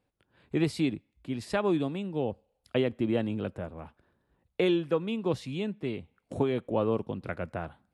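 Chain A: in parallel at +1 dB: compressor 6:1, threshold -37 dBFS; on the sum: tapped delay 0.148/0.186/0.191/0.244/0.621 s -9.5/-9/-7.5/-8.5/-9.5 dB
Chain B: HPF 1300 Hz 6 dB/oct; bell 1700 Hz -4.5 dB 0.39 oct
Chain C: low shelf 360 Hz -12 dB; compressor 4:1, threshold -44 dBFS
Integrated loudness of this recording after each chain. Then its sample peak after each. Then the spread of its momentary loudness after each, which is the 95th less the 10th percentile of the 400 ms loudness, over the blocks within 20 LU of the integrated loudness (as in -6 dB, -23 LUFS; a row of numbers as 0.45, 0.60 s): -27.0, -40.5, -47.5 LUFS; -10.5, -21.0, -26.5 dBFS; 8, 14, 7 LU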